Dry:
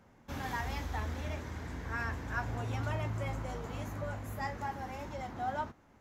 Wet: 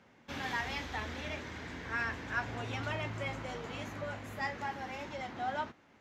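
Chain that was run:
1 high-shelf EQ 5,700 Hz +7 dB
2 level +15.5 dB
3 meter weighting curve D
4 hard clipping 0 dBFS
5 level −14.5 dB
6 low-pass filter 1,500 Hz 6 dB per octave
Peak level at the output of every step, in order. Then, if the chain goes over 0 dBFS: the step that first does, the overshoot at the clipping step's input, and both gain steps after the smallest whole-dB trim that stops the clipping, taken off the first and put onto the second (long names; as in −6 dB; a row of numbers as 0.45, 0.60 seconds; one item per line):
−21.0, −5.5, −3.5, −3.5, −18.0, −21.0 dBFS
no step passes full scale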